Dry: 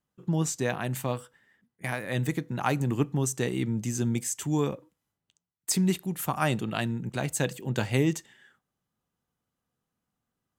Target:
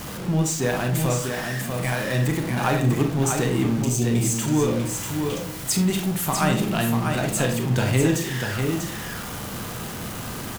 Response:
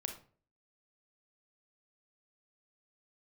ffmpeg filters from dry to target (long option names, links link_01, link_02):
-filter_complex "[0:a]aeval=exprs='val(0)+0.5*0.0335*sgn(val(0))':channel_layout=same,asettb=1/sr,asplit=3[link_01][link_02][link_03];[link_01]atrim=end=3.834[link_04];[link_02]atrim=start=3.83:end=4.33,asetpts=PTS-STARTPTS,afade=type=in:duration=0.004:curve=qsin,afade=type=out:start_time=0.496:duration=0.004:curve=qsin,asuperstop=centerf=1300:order=20:qfactor=0.89[link_05];[link_03]atrim=start=4.326[link_06];[link_04][link_05]acrossfade=duration=0.004:curve1=hsin:curve2=qsin[link_07];[link_07][link_06]acrossfade=duration=0.004:curve1=qsin:curve2=hsin,aecho=1:1:643:0.562[link_08];[1:a]atrim=start_sample=2205[link_09];[link_08][link_09]afir=irnorm=-1:irlink=0,volume=3.5dB"